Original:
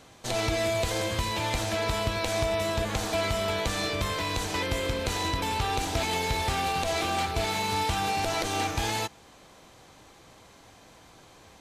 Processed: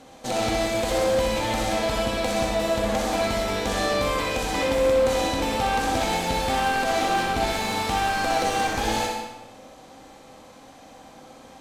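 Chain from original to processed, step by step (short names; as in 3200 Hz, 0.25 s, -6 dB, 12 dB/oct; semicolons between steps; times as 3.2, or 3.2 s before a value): bell 85 Hz -5.5 dB 0.78 oct; small resonant body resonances 260/520/770 Hz, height 11 dB, ringing for 45 ms; one-sided clip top -23 dBFS; on a send: flutter echo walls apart 10.8 m, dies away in 0.7 s; on the sum: digital reverb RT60 0.84 s, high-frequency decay 0.85×, pre-delay 40 ms, DRR 4 dB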